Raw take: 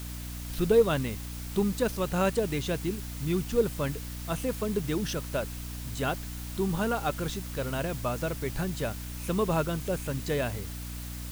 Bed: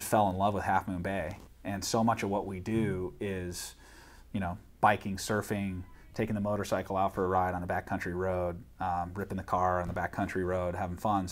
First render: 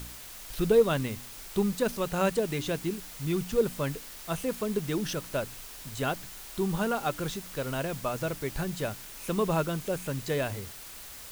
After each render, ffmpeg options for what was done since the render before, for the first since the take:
ffmpeg -i in.wav -af "bandreject=frequency=60:width_type=h:width=4,bandreject=frequency=120:width_type=h:width=4,bandreject=frequency=180:width_type=h:width=4,bandreject=frequency=240:width_type=h:width=4,bandreject=frequency=300:width_type=h:width=4" out.wav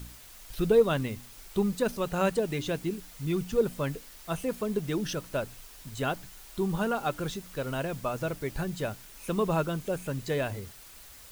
ffmpeg -i in.wav -af "afftdn=noise_reduction=6:noise_floor=-45" out.wav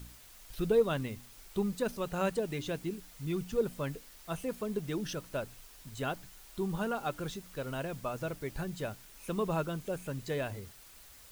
ffmpeg -i in.wav -af "volume=-5dB" out.wav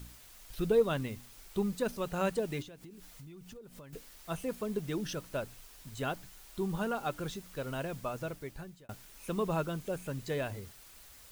ffmpeg -i in.wav -filter_complex "[0:a]asettb=1/sr,asplit=3[link_01][link_02][link_03];[link_01]atrim=end=2.624[link_04];[link_02]atrim=start=2.62:end=3.93,asetpts=PTS-STARTPTS,afade=type=in:duration=0.004:curve=qsin,afade=type=out:start_time=1.306:duration=0.004:curve=qsin,acompressor=threshold=-46dB:ratio=20:attack=3.2:release=140:knee=1:detection=peak[link_05];[link_03]atrim=start=3.926[link_06];[link_04][link_05]acrossfade=duration=0.004:curve1=hsin:curve2=qsin[link_07];[link_07][link_06]acrossfade=duration=0.004:curve1=qsin:curve2=hsin,asplit=2[link_08][link_09];[link_08]atrim=end=8.89,asetpts=PTS-STARTPTS,afade=type=out:start_time=7.86:duration=1.03:curve=qsin[link_10];[link_09]atrim=start=8.89,asetpts=PTS-STARTPTS,afade=type=in:duration=0.004:curve=hsin[link_11];[link_10][link_11]concat=n=2:v=0:a=1" out.wav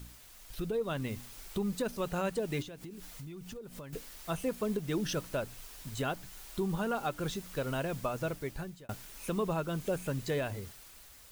ffmpeg -i in.wav -af "alimiter=level_in=4dB:limit=-24dB:level=0:latency=1:release=265,volume=-4dB,dynaudnorm=framelen=150:gausssize=11:maxgain=5dB" out.wav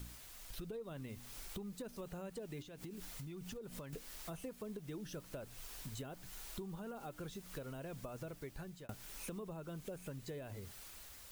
ffmpeg -i in.wav -filter_complex "[0:a]acrossover=split=630|7800[link_01][link_02][link_03];[link_02]alimiter=level_in=12dB:limit=-24dB:level=0:latency=1:release=30,volume=-12dB[link_04];[link_01][link_04][link_03]amix=inputs=3:normalize=0,acompressor=threshold=-44dB:ratio=6" out.wav

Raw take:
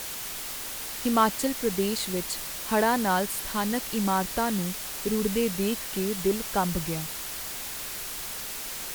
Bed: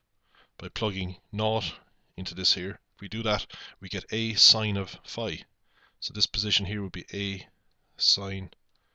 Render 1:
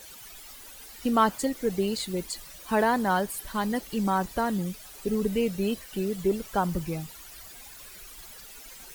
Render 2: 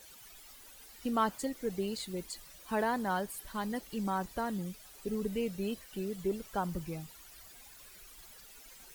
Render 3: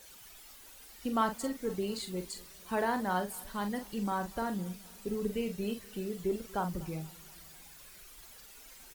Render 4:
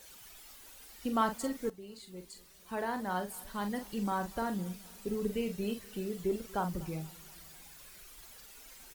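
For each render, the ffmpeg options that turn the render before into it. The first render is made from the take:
ffmpeg -i in.wav -af "afftdn=noise_reduction=14:noise_floor=-36" out.wav
ffmpeg -i in.wav -af "volume=-8dB" out.wav
ffmpeg -i in.wav -filter_complex "[0:a]asplit=2[link_01][link_02];[link_02]adelay=44,volume=-8dB[link_03];[link_01][link_03]amix=inputs=2:normalize=0,aecho=1:1:239|478|717|956:0.0668|0.0368|0.0202|0.0111" out.wav
ffmpeg -i in.wav -filter_complex "[0:a]asplit=2[link_01][link_02];[link_01]atrim=end=1.7,asetpts=PTS-STARTPTS,afade=type=out:start_time=1.696:duration=0.004:curve=hsin:silence=0.149624[link_03];[link_02]atrim=start=1.7,asetpts=PTS-STARTPTS,afade=type=in:duration=2.18:silence=0.149624[link_04];[link_03][link_04]concat=n=2:v=0:a=1" out.wav

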